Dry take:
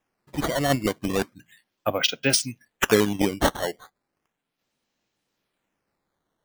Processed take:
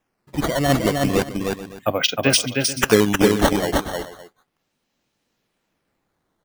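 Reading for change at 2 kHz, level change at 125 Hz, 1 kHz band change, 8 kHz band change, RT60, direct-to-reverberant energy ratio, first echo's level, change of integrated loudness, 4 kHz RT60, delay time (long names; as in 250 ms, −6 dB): +4.5 dB, +7.0 dB, +4.5 dB, +4.0 dB, no reverb audible, no reverb audible, −3.5 dB, +4.5 dB, no reverb audible, 311 ms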